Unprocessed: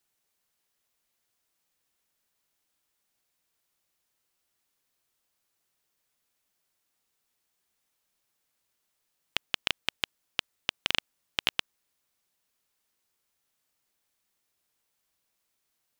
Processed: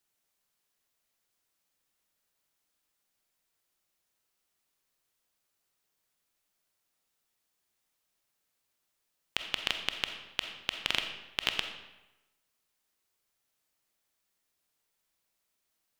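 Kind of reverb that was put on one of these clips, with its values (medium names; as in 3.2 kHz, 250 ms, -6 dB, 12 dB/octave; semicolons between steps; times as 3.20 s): algorithmic reverb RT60 1 s, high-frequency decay 0.8×, pre-delay 5 ms, DRR 5.5 dB; trim -2.5 dB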